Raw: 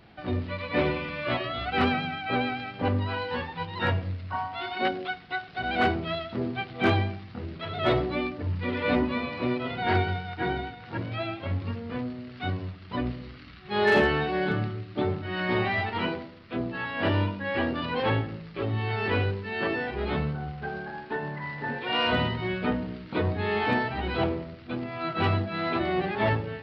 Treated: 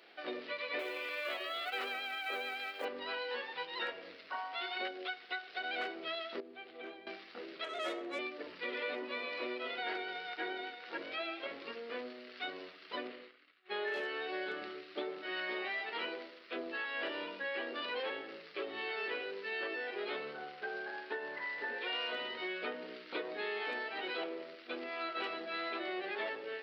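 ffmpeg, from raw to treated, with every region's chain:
-filter_complex "[0:a]asettb=1/sr,asplit=3[s0][s1][s2];[s0]atrim=end=0.794[s3];[s1]atrim=start=0.79:end=2.85,asetpts=PTS-STARTPTS,afade=t=in:d=0.004:c=qsin,afade=t=out:st=2.056:d=0.004:c=qsin,highpass=320,acrusher=bits=7:mode=log:mix=0:aa=0.000001[s4];[s2]atrim=start=2.846[s5];[s3][s4]acrossfade=d=0.004:c1=hsin:c2=qsin[s6];[s6][s5]acrossfade=d=0.004:c1=qsin:c2=hsin,asettb=1/sr,asplit=3[s7][s8][s9];[s7]atrim=end=6.404[s10];[s8]atrim=start=6.4:end=7.07,asetpts=PTS-STARTPTS,afade=t=in:d=0.004:c=qsin,afade=t=out:st=0.666:d=0.004:c=qsin,lowpass=3000,equalizer=f=1600:t=o:w=2.7:g=-7.5,acompressor=threshold=0.0112:ratio=4:attack=3.2:release=140:knee=1:detection=peak[s11];[s9]atrim=start=7.066[s12];[s10][s11]acrossfade=d=0.004:c1=hsin:c2=qsin[s13];[s13][s12]acrossfade=d=0.004:c1=qsin:c2=hsin,asettb=1/sr,asplit=3[s14][s15][s16];[s14]atrim=end=7.644[s17];[s15]atrim=start=7.64:end=8.19,asetpts=PTS-STARTPTS,afade=t=in:d=0.004:c=qsin,afade=t=out:st=0.546:d=0.004:c=qsin,afreqshift=-24,adynamicsmooth=sensitivity=4:basefreq=2500[s18];[s16]atrim=start=8.186[s19];[s17][s18]acrossfade=d=0.004:c1=hsin:c2=qsin[s20];[s20][s19]acrossfade=d=0.004:c1=qsin:c2=hsin,asettb=1/sr,asplit=3[s21][s22][s23];[s21]atrim=end=13.074[s24];[s22]atrim=start=13.07:end=13.94,asetpts=PTS-STARTPTS,afade=t=in:d=0.004:c=qsin,afade=t=out:st=0.866:d=0.004:c=qsin,highpass=170,lowpass=3200,agate=range=0.0224:threshold=0.00891:ratio=3:release=100:detection=peak[s25];[s23]atrim=start=13.936[s26];[s24][s25]acrossfade=d=0.004:c1=hsin:c2=qsin[s27];[s27][s26]acrossfade=d=0.004:c1=qsin:c2=hsin,highpass=f=410:w=0.5412,highpass=f=410:w=1.3066,equalizer=f=880:t=o:w=1.1:g=-9,acompressor=threshold=0.0141:ratio=6,volume=1.12"

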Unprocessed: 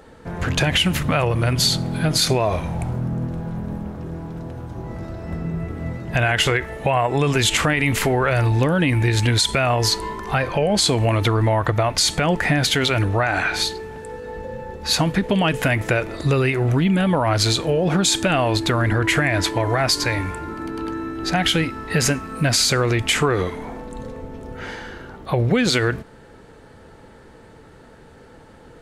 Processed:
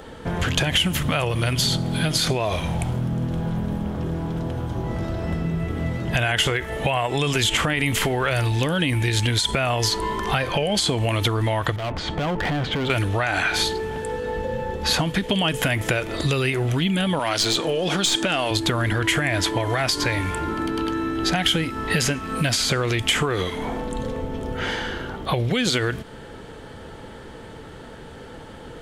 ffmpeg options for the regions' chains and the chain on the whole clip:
-filter_complex "[0:a]asettb=1/sr,asplit=3[s0][s1][s2];[s0]atrim=end=11.764[s3];[s1]atrim=start=11.76:end=12.9,asetpts=PTS-STARTPTS,afade=t=in:d=0.004:c=qsin,afade=t=out:st=1.136:d=0.004:c=qsin,lowpass=1300,acompressor=threshold=0.0794:ratio=3:attack=3.2:release=140:knee=1:detection=peak,asoftclip=type=hard:threshold=0.0501[s4];[s2]atrim=start=12.896[s5];[s3][s4]acrossfade=d=0.004:c1=hsin:c2=qsin[s6];[s6][s5]acrossfade=d=0.004:c1=qsin:c2=hsin,asettb=1/sr,asplit=3[s7][s8][s9];[s7]atrim=end=17.194[s10];[s8]atrim=start=17.19:end=18.51,asetpts=PTS-STARTPTS,afade=t=in:d=0.004:c=qsin,afade=t=out:st=1.316:d=0.004:c=qsin,highpass=200,lowpass=6200,aemphasis=mode=production:type=75fm,aeval=exprs='(tanh(2.24*val(0)+0.2)-tanh(0.2))/2.24':c=same[s11];[s9]atrim=start=18.506[s12];[s10][s11]acrossfade=d=0.004:c1=hsin:c2=qsin[s13];[s13][s12]acrossfade=d=0.004:c1=qsin:c2=hsin,equalizer=f=3200:w=5.2:g=8.5,acrossover=split=2200|5200[s14][s15][s16];[s14]acompressor=threshold=0.0398:ratio=4[s17];[s15]acompressor=threshold=0.0178:ratio=4[s18];[s16]acompressor=threshold=0.0178:ratio=4[s19];[s17][s18][s19]amix=inputs=3:normalize=0,volume=2"

